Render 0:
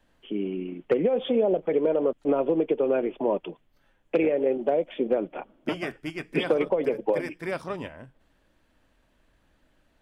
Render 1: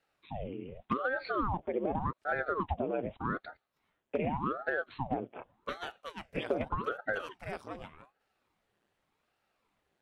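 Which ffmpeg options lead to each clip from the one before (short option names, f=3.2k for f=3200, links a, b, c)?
-af "highpass=170,aeval=exprs='val(0)*sin(2*PI*570*n/s+570*0.9/0.85*sin(2*PI*0.85*n/s))':c=same,volume=-6.5dB"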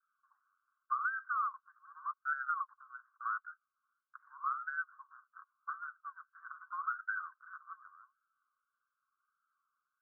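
-af "asuperpass=centerf=1300:order=12:qfactor=2.7,volume=1.5dB"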